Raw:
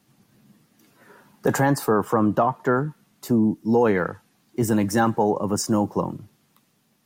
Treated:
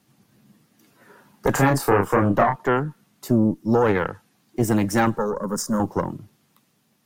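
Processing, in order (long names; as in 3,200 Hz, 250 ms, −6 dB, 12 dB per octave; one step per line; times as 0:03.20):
harmonic generator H 2 −7 dB, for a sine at −8 dBFS
0:01.52–0:02.56: double-tracking delay 30 ms −4 dB
0:05.18–0:05.80: phaser with its sweep stopped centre 500 Hz, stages 8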